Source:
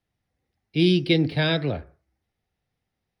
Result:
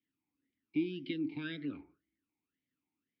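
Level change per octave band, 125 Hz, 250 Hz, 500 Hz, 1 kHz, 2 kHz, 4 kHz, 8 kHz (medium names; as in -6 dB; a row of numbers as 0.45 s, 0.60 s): -24.0 dB, -13.0 dB, -19.0 dB, -23.0 dB, -17.5 dB, -22.0 dB, no reading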